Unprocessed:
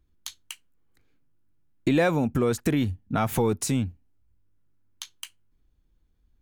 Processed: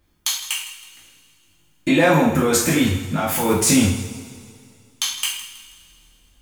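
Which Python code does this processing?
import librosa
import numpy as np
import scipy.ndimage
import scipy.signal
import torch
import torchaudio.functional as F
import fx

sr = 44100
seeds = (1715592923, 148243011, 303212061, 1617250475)

p1 = fx.low_shelf(x, sr, hz=420.0, db=-10.5)
p2 = fx.notch(p1, sr, hz=4000.0, q=20.0)
p3 = fx.over_compress(p2, sr, threshold_db=-34.0, ratio=-0.5)
p4 = p2 + (p3 * librosa.db_to_amplitude(1.5))
p5 = fx.tremolo_random(p4, sr, seeds[0], hz=3.5, depth_pct=55)
p6 = p5 + fx.echo_feedback(p5, sr, ms=161, feedback_pct=37, wet_db=-15.0, dry=0)
p7 = fx.rev_double_slope(p6, sr, seeds[1], early_s=0.52, late_s=2.5, knee_db=-19, drr_db=-6.5)
y = p7 * librosa.db_to_amplitude(3.5)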